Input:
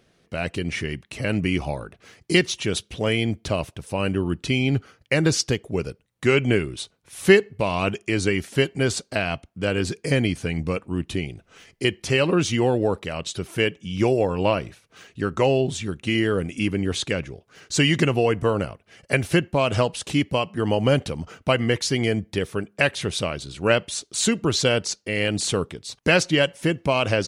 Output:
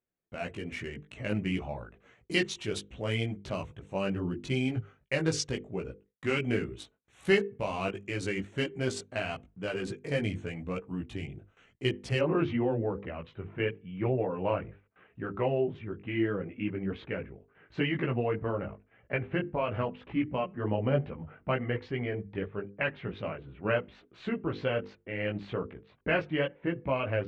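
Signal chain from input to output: local Wiener filter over 9 samples; hum notches 50/100/150/200/250/300/350/400/450/500 Hz; gate with hold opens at -43 dBFS; low-pass 10 kHz 24 dB/octave, from 12.19 s 2.5 kHz; chorus voices 4, 0.91 Hz, delay 18 ms, depth 2.8 ms; trim -5.5 dB

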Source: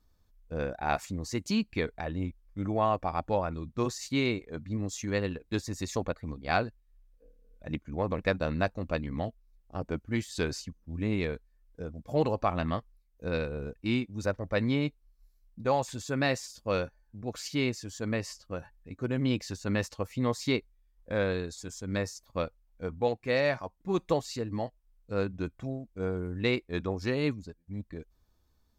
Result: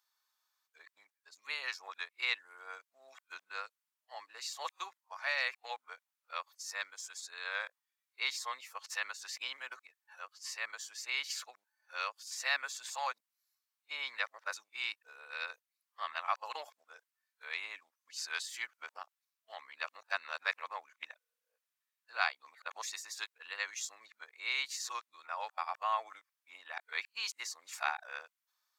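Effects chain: reverse the whole clip; high-pass 1 kHz 24 dB/octave

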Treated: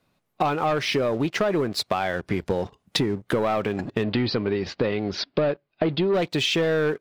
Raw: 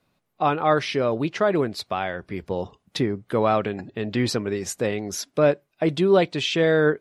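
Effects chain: waveshaping leveller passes 2; 4.03–6.14 s: Chebyshev low-pass 4.7 kHz, order 5; compression 6:1, threshold -26 dBFS, peak gain reduction 14.5 dB; trim +4.5 dB

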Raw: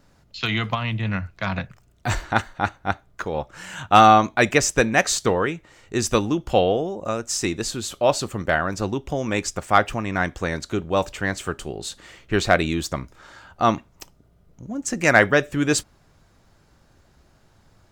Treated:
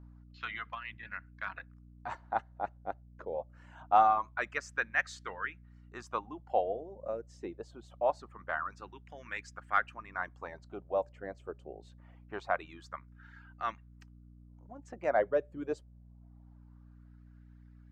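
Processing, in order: LFO band-pass sine 0.24 Hz 540–1700 Hz; hum 60 Hz, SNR 16 dB; reverb removal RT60 0.89 s; trim -7 dB

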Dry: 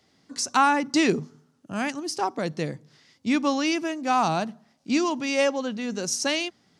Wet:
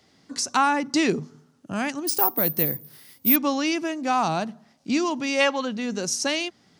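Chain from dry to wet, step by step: 5.41–5.65 s: time-frequency box 820–4500 Hz +8 dB; in parallel at +1 dB: compression, threshold -32 dBFS, peak gain reduction 16 dB; 2.07–3.36 s: on the sum: careless resampling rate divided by 3×, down none, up zero stuff; trim -2.5 dB

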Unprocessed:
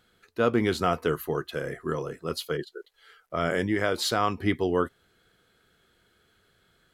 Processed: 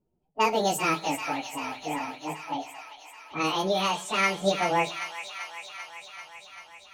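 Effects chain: frequency-domain pitch shifter +11 st; level-controlled noise filter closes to 350 Hz, open at -24.5 dBFS; treble shelf 7.2 kHz +10 dB; feedback echo behind a high-pass 390 ms, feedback 72%, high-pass 1.4 kHz, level -7 dB; reverberation RT60 0.50 s, pre-delay 7 ms, DRR 13.5 dB; trim +2 dB

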